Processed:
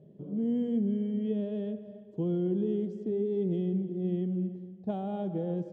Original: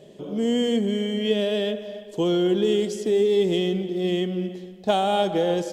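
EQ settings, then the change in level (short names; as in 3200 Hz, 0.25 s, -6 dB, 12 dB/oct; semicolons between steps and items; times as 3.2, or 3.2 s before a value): band-pass 140 Hz, Q 1.4; 0.0 dB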